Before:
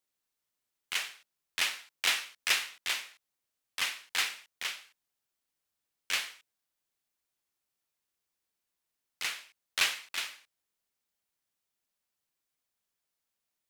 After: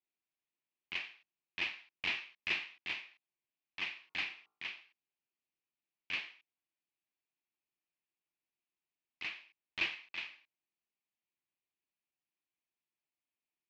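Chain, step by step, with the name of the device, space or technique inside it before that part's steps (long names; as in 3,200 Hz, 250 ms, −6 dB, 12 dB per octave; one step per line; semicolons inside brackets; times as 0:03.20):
0:03.86–0:04.80: hum removal 54.68 Hz, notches 26
guitar amplifier (tube saturation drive 20 dB, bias 0.6; bass and treble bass +2 dB, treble −4 dB; loudspeaker in its box 76–4,300 Hz, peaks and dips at 92 Hz −10 dB, 340 Hz +6 dB, 500 Hz −7 dB, 1,400 Hz −8 dB, 2,500 Hz +7 dB, 3,700 Hz −3 dB)
level −4.5 dB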